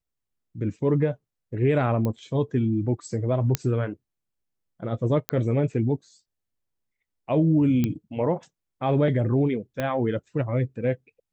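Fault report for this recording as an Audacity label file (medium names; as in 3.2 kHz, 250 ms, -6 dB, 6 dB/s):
2.050000	2.050000	pop -16 dBFS
3.550000	3.550000	pop -7 dBFS
5.290000	5.290000	pop -8 dBFS
7.840000	7.840000	pop -12 dBFS
9.800000	9.800000	pop -14 dBFS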